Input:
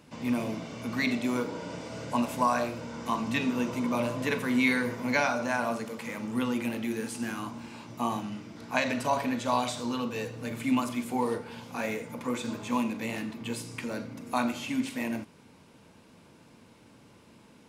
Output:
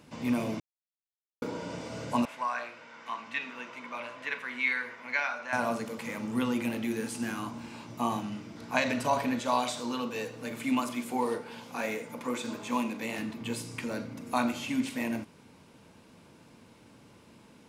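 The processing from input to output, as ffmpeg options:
-filter_complex "[0:a]asettb=1/sr,asplit=3[s0][s1][s2];[s0]atrim=end=2.254[s3];[s1]atrim=start=2.25:end=5.53,asetpts=PTS-STARTPTS,afade=t=in:d=0.004:c=qsin,afade=t=out:st=3.276:d=0.004:c=qsin,bandpass=f=1900:t=q:w=1.3[s4];[s2]atrim=start=5.526[s5];[s3][s4]acrossfade=d=0.004:c1=hsin:c2=qsin[s6];[s6][s5]acrossfade=d=0.004:c1=qsin:c2=hsin,asettb=1/sr,asplit=3[s7][s8][s9];[s7]atrim=end=9.404[s10];[s8]atrim=start=9.4:end=13.19,asetpts=PTS-STARTPTS,afade=t=in:d=0.004:c=qsin,afade=t=out:st=3.786:d=0.004:c=qsin,equalizer=f=86:t=o:w=1.8:g=-10.5[s11];[s9]atrim=start=13.186[s12];[s10][s11]acrossfade=d=0.004:c1=hsin:c2=qsin[s13];[s13][s12]acrossfade=d=0.004:c1=qsin:c2=hsin,asplit=3[s14][s15][s16];[s14]atrim=end=0.6,asetpts=PTS-STARTPTS,afade=t=out:st=0.596:d=0.004:c=hsin[s17];[s15]atrim=start=0.6:end=1.42,asetpts=PTS-STARTPTS,volume=0[s18];[s16]atrim=start=1.42,asetpts=PTS-STARTPTS,afade=t=in:d=0.004:c=hsin[s19];[s17][s18][s19]concat=n=3:v=0:a=1"

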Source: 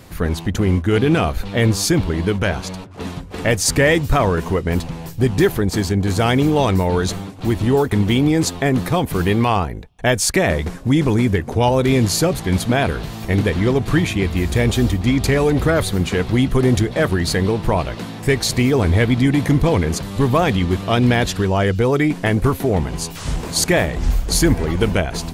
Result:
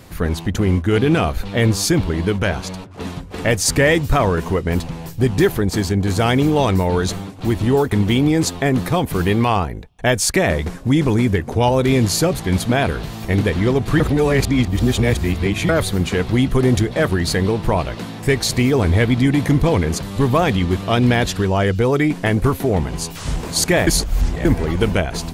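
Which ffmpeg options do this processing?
-filter_complex "[0:a]asplit=5[s0][s1][s2][s3][s4];[s0]atrim=end=14.002[s5];[s1]atrim=start=13.998:end=15.692,asetpts=PTS-STARTPTS,areverse[s6];[s2]atrim=start=15.688:end=23.872[s7];[s3]atrim=start=23.868:end=24.452,asetpts=PTS-STARTPTS,areverse[s8];[s4]atrim=start=24.448[s9];[s5][s6]acrossfade=d=0.004:c1=hsin:c2=hsin[s10];[s10][s7]acrossfade=d=0.004:c1=hsin:c2=hsin[s11];[s11][s8]acrossfade=d=0.004:c1=hsin:c2=hsin[s12];[s12][s9]acrossfade=d=0.004:c1=hsin:c2=hsin"

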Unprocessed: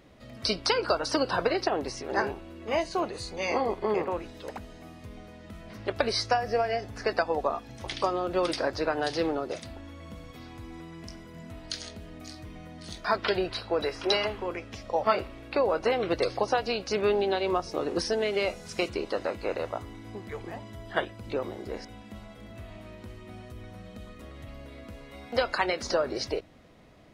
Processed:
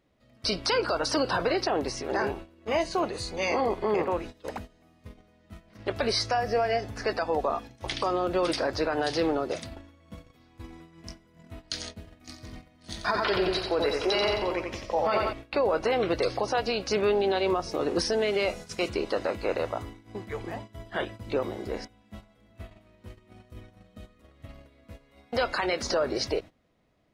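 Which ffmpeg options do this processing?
-filter_complex "[0:a]asettb=1/sr,asplit=3[s0][s1][s2];[s0]atrim=end=11.974[s3];[s1]atrim=start=11.97:end=15.33,asetpts=PTS-STARTPTS,afade=t=in:d=0.004:c=qsin,afade=t=out:st=3.356:d=0.004:c=qsin,aecho=1:1:88|176|264|352|440|528:0.562|0.259|0.119|0.0547|0.0252|0.0116,atrim=end_sample=148176[s4];[s2]atrim=start=15.326[s5];[s3][s4]acrossfade=d=0.004:c1=hsin:c2=qsin[s6];[s6][s5]acrossfade=d=0.004:c1=qsin:c2=hsin,agate=range=0.141:threshold=0.00891:ratio=16:detection=peak,alimiter=limit=0.1:level=0:latency=1:release=11,volume=1.41"

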